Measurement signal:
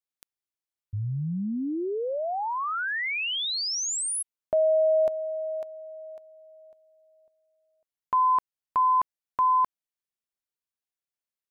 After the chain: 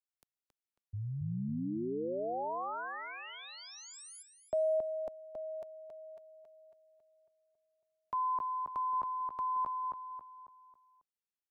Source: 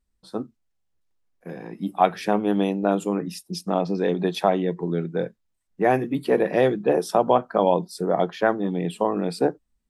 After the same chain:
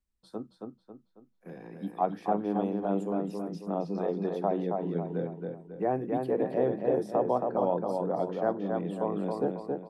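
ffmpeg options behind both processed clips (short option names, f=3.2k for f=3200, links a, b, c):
-filter_complex "[0:a]acrossover=split=230|1200[a][b][c];[c]acompressor=threshold=-43dB:ratio=6:attack=0.33:release=260:detection=peak[d];[a][b][d]amix=inputs=3:normalize=0,asplit=2[e][f];[f]adelay=273,lowpass=f=4k:p=1,volume=-3.5dB,asplit=2[g][h];[h]adelay=273,lowpass=f=4k:p=1,volume=0.42,asplit=2[i][j];[j]adelay=273,lowpass=f=4k:p=1,volume=0.42,asplit=2[k][l];[l]adelay=273,lowpass=f=4k:p=1,volume=0.42,asplit=2[m][n];[n]adelay=273,lowpass=f=4k:p=1,volume=0.42[o];[e][g][i][k][m][o]amix=inputs=6:normalize=0,volume=-8.5dB"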